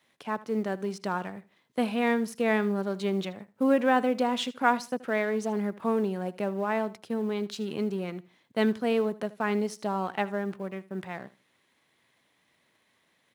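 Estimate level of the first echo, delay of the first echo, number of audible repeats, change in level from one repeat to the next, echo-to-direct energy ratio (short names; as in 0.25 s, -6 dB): -19.0 dB, 78 ms, 2, -13.0 dB, -19.0 dB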